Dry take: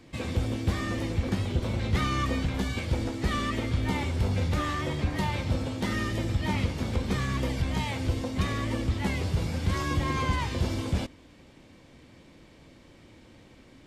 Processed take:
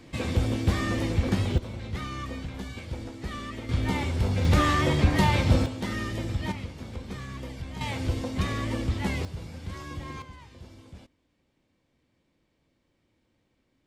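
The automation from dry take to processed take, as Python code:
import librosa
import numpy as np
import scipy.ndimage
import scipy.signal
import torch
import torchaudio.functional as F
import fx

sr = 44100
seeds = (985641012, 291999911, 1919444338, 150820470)

y = fx.gain(x, sr, db=fx.steps((0.0, 3.0), (1.58, -7.5), (3.69, 1.0), (4.45, 7.0), (5.66, -2.0), (6.52, -9.0), (7.81, 0.0), (9.25, -10.0), (10.22, -19.0)))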